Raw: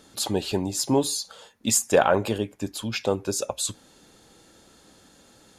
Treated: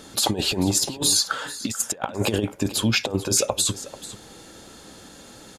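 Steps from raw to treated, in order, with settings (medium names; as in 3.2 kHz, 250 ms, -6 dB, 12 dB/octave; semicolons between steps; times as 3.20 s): 1.12–1.67 s: peaking EQ 1.5 kHz +14.5 dB 0.96 oct; compressor with a negative ratio -28 dBFS, ratio -0.5; delay 439 ms -16 dB; trim +5.5 dB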